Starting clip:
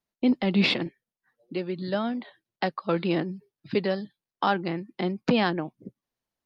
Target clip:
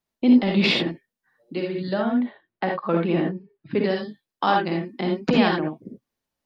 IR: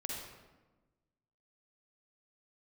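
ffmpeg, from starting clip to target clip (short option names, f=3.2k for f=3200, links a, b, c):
-filter_complex "[0:a]asettb=1/sr,asplit=3[a][b][c];[a]atrim=end=1.934[d];[b]atrim=start=1.93:end=3.81,asetpts=PTS-STARTPTS,afade=t=in:d=0.004:c=qsin,afade=t=out:st=1.876:d=0.004:c=qsin,lowpass=2.3k[e];[c]atrim=start=3.806[f];[d][e]acrossfade=d=0.004:c1=hsin:c2=qsin[g];[g][f]acrossfade=d=0.004:c1=qsin:c2=hsin[h];[1:a]atrim=start_sample=2205,atrim=end_sample=3969[i];[h][i]afir=irnorm=-1:irlink=0,volume=5dB"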